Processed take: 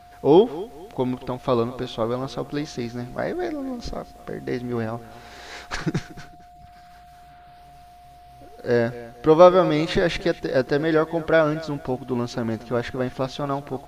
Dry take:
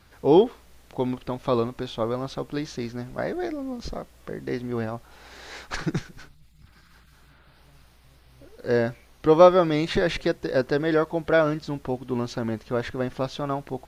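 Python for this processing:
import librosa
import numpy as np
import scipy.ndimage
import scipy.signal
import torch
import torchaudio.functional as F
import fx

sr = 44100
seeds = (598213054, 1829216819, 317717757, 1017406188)

y = x + 10.0 ** (-48.0 / 20.0) * np.sin(2.0 * np.pi * 710.0 * np.arange(len(x)) / sr)
y = fx.echo_feedback(y, sr, ms=227, feedback_pct=30, wet_db=-18)
y = y * 10.0 ** (2.0 / 20.0)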